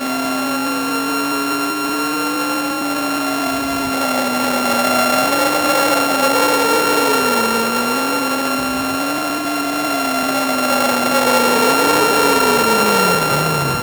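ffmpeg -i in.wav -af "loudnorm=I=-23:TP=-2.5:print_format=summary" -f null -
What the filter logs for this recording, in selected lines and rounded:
Input Integrated:    -15.1 LUFS
Input True Peak:      -2.3 dBTP
Input LRA:             5.0 LU
Input Threshold:     -25.1 LUFS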